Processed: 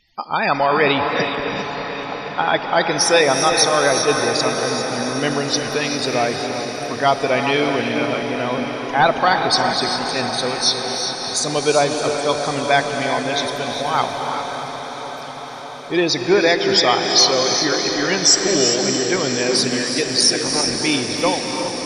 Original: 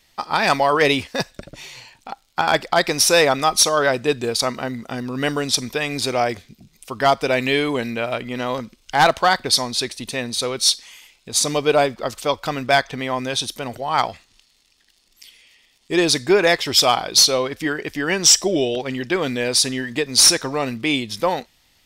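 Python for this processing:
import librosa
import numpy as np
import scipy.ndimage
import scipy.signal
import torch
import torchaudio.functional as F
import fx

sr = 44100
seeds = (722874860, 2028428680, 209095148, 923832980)

p1 = fx.cycle_switch(x, sr, every=3, mode='muted', at=(20.17, 20.8), fade=0.02)
p2 = fx.spec_topn(p1, sr, count=64)
p3 = fx.rev_gated(p2, sr, seeds[0], gate_ms=430, shape='rising', drr_db=4.5)
p4 = fx.wow_flutter(p3, sr, seeds[1], rate_hz=2.1, depth_cents=20.0)
y = p4 + fx.echo_diffused(p4, sr, ms=627, feedback_pct=68, wet_db=-8.5, dry=0)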